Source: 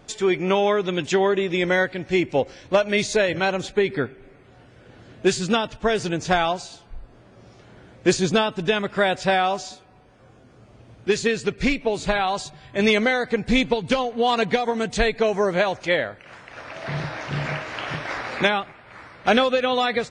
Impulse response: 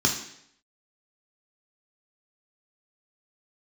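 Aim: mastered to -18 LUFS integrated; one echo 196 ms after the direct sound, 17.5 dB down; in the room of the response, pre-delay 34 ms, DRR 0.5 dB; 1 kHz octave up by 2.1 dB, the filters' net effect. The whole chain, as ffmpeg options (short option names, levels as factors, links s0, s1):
-filter_complex "[0:a]equalizer=f=1000:t=o:g=3,aecho=1:1:196:0.133,asplit=2[s0][s1];[1:a]atrim=start_sample=2205,adelay=34[s2];[s1][s2]afir=irnorm=-1:irlink=0,volume=0.224[s3];[s0][s3]amix=inputs=2:normalize=0,volume=0.944"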